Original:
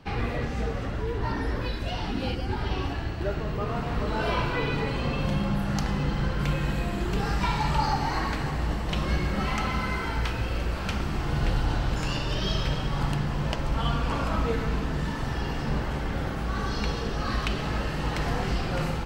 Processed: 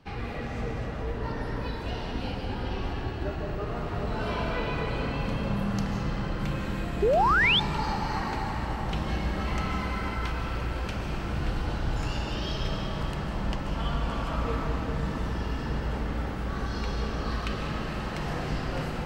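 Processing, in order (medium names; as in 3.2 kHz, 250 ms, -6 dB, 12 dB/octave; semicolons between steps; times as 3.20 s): algorithmic reverb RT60 4.7 s, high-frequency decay 0.35×, pre-delay 110 ms, DRR 0 dB; painted sound rise, 7.02–7.60 s, 380–3700 Hz -16 dBFS; trim -6 dB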